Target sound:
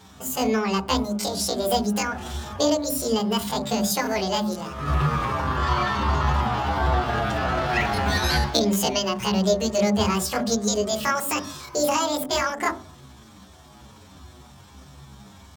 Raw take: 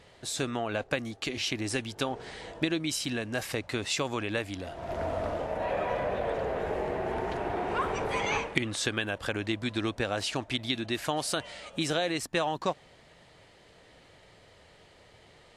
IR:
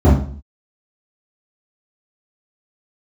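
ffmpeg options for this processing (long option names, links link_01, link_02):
-filter_complex "[0:a]asetrate=80880,aresample=44100,atempo=0.545254,asplit=2[link_01][link_02];[1:a]atrim=start_sample=2205[link_03];[link_02][link_03]afir=irnorm=-1:irlink=0,volume=-31.5dB[link_04];[link_01][link_04]amix=inputs=2:normalize=0,asplit=2[link_05][link_06];[link_06]adelay=7,afreqshift=-1.5[link_07];[link_05][link_07]amix=inputs=2:normalize=1,volume=8.5dB"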